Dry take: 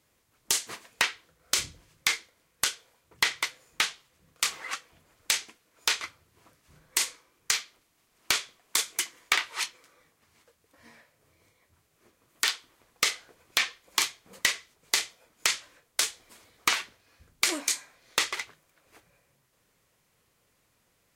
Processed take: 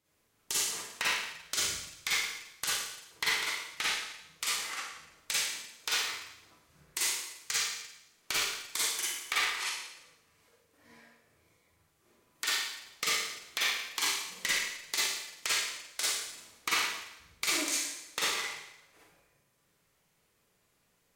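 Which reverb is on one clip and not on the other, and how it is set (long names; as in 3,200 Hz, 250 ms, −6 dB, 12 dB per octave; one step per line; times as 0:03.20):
four-comb reverb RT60 0.86 s, DRR −7.5 dB
level −10.5 dB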